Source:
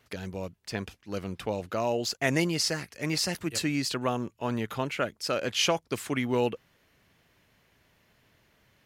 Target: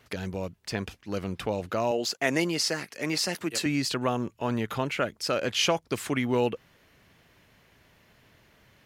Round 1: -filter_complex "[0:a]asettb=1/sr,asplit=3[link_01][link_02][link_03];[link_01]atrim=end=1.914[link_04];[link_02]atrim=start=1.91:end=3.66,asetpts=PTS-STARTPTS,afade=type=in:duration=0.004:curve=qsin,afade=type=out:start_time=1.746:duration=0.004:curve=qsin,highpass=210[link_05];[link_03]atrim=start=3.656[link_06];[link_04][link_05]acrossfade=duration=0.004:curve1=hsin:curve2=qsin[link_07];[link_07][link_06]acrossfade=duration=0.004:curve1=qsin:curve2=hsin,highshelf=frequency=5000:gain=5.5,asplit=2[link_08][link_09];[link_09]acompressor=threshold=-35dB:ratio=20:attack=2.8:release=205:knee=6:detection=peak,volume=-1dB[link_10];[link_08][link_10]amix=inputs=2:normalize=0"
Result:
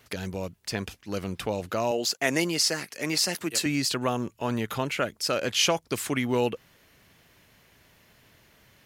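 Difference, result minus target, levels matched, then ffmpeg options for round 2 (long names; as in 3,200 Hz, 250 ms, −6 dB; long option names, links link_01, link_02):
8,000 Hz band +3.5 dB
-filter_complex "[0:a]asettb=1/sr,asplit=3[link_01][link_02][link_03];[link_01]atrim=end=1.914[link_04];[link_02]atrim=start=1.91:end=3.66,asetpts=PTS-STARTPTS,afade=type=in:duration=0.004:curve=qsin,afade=type=out:start_time=1.746:duration=0.004:curve=qsin,highpass=210[link_05];[link_03]atrim=start=3.656[link_06];[link_04][link_05]acrossfade=duration=0.004:curve1=hsin:curve2=qsin[link_07];[link_07][link_06]acrossfade=duration=0.004:curve1=qsin:curve2=hsin,highshelf=frequency=5000:gain=-2.5,asplit=2[link_08][link_09];[link_09]acompressor=threshold=-35dB:ratio=20:attack=2.8:release=205:knee=6:detection=peak,volume=-1dB[link_10];[link_08][link_10]amix=inputs=2:normalize=0"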